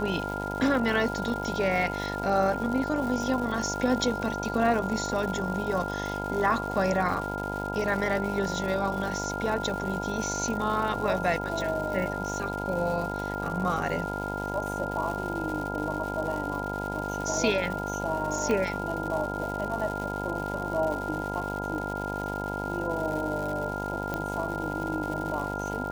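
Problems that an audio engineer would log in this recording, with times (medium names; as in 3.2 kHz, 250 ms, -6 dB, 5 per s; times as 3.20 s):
buzz 50 Hz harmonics 20 -34 dBFS
crackle 300 per s -34 dBFS
whine 1.4 kHz -34 dBFS
18.51 s: pop -16 dBFS
24.14 s: pop -17 dBFS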